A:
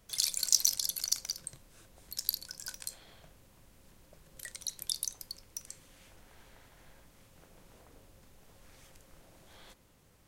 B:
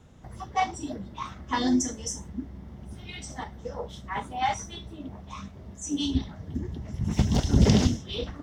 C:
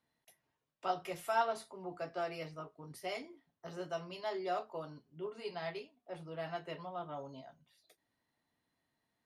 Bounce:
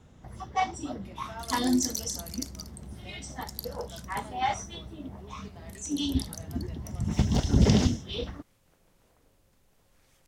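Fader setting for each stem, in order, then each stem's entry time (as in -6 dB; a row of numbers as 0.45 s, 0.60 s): -7.0 dB, -1.5 dB, -10.5 dB; 1.30 s, 0.00 s, 0.00 s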